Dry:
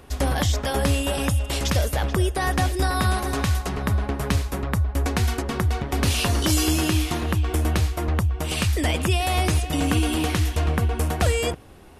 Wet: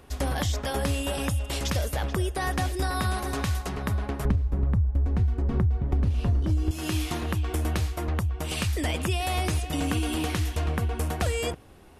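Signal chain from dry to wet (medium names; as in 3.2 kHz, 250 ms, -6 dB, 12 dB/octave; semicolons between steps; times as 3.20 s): 4.25–6.71 s: tilt EQ -4.5 dB/octave; compression 12:1, threshold -16 dBFS, peak gain reduction 15.5 dB; trim -4.5 dB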